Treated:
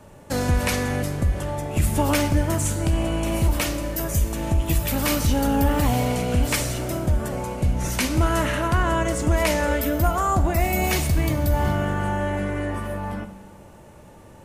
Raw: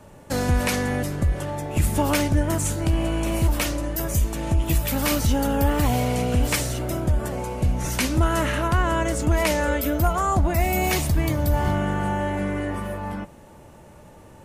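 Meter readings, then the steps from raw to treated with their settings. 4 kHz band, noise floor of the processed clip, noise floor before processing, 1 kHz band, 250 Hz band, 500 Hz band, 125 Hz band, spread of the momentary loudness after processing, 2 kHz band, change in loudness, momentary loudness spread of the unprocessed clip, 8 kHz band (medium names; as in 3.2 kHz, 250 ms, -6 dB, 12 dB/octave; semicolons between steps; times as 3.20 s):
+0.5 dB, -46 dBFS, -47 dBFS, +0.5 dB, 0.0 dB, +0.5 dB, +0.5 dB, 6 LU, +0.5 dB, +0.5 dB, 6 LU, +0.5 dB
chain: Schroeder reverb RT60 1.5 s, combs from 32 ms, DRR 10.5 dB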